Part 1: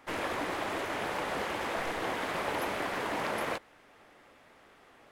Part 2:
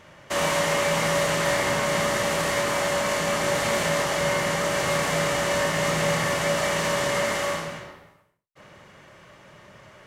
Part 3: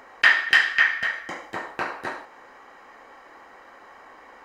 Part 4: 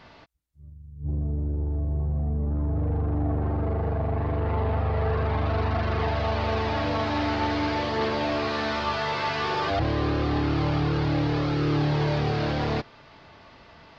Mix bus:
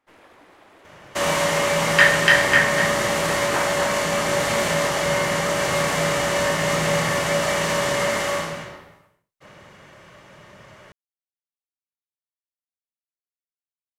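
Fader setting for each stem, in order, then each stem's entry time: -17.0 dB, +2.5 dB, +1.5 dB, mute; 0.00 s, 0.85 s, 1.75 s, mute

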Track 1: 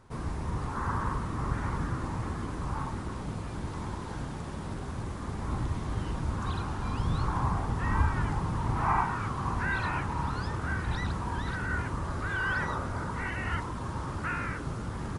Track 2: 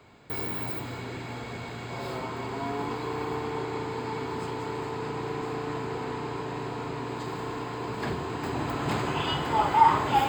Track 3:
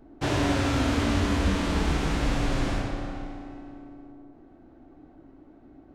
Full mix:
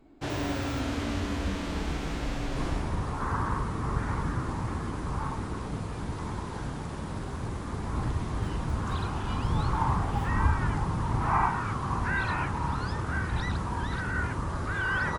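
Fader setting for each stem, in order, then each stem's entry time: +1.5 dB, -15.5 dB, -6.5 dB; 2.45 s, 0.00 s, 0.00 s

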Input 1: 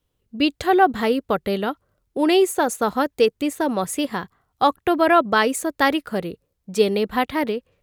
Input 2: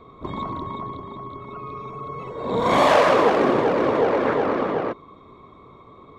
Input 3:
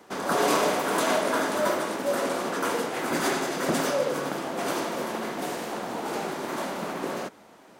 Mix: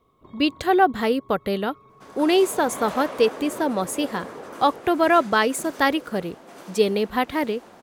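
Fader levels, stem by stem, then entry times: -1.5 dB, -18.0 dB, -15.0 dB; 0.00 s, 0.00 s, 1.90 s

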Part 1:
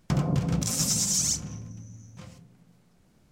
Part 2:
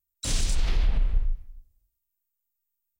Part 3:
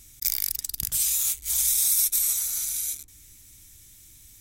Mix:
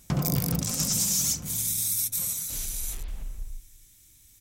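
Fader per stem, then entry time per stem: -1.5 dB, -12.5 dB, -5.5 dB; 0.00 s, 2.25 s, 0.00 s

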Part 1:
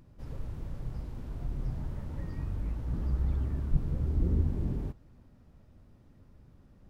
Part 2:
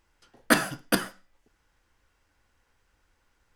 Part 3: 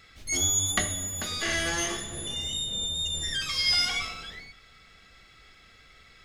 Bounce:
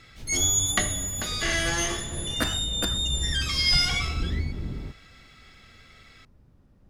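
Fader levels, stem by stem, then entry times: -1.0 dB, -8.0 dB, +2.0 dB; 0.00 s, 1.90 s, 0.00 s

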